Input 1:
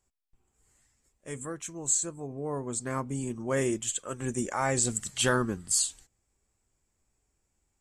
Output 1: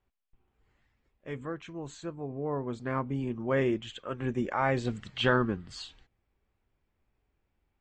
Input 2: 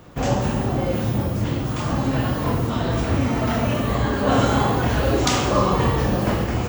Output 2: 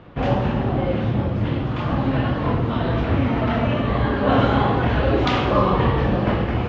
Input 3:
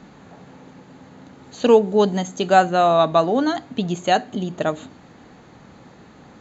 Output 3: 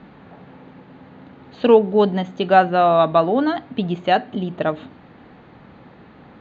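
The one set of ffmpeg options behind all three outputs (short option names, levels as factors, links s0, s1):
-af "lowpass=f=3500:w=0.5412,lowpass=f=3500:w=1.3066,volume=1.12"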